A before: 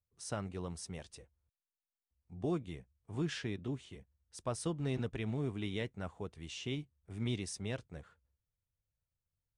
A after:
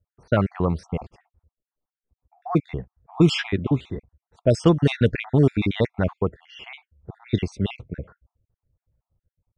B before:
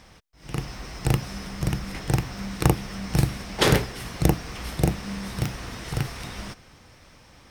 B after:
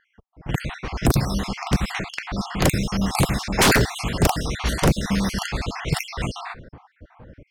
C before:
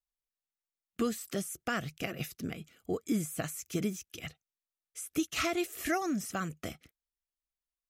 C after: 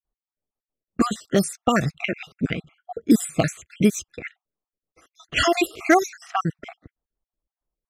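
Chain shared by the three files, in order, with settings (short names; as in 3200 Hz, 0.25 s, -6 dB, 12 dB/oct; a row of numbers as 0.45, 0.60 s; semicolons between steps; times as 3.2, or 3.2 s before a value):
random spectral dropouts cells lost 51%; wavefolder -21.5 dBFS; low-pass opened by the level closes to 680 Hz, open at -30.5 dBFS; match loudness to -23 LUFS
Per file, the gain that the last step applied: +20.5, +12.0, +16.0 dB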